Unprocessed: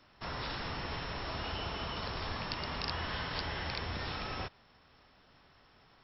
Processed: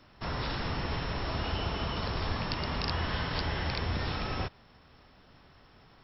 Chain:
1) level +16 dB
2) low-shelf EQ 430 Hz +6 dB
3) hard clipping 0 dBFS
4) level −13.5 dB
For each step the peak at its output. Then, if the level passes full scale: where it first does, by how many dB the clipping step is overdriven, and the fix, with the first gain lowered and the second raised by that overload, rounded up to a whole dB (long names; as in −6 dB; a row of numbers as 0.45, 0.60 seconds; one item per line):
−2.5, −1.5, −1.5, −15.0 dBFS
no step passes full scale